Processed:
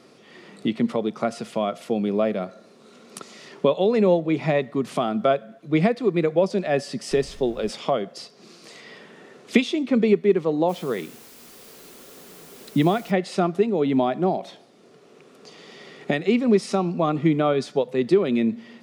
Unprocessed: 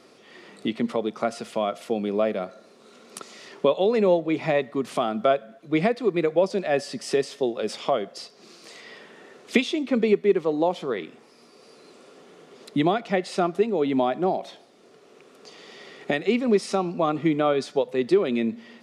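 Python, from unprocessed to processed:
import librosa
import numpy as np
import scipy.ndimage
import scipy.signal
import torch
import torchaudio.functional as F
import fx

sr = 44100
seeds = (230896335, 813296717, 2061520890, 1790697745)

y = fx.peak_eq(x, sr, hz=150.0, db=7.0, octaves=1.4)
y = fx.dmg_noise_colour(y, sr, seeds[0], colour='brown', level_db=-41.0, at=(7.11, 7.69), fade=0.02)
y = fx.quant_dither(y, sr, seeds[1], bits=8, dither='triangular', at=(10.68, 13.1), fade=0.02)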